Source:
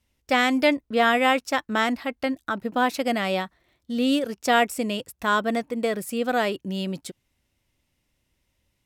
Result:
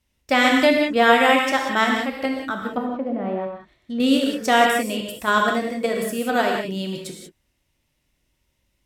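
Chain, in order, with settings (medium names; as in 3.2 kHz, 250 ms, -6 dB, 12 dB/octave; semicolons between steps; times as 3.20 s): 2.71–4.00 s: low-pass that closes with the level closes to 340 Hz, closed at -19 dBFS; in parallel at -3 dB: level held to a coarse grid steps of 22 dB; on the sum: gated-style reverb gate 210 ms flat, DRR 0.5 dB; trim -1.5 dB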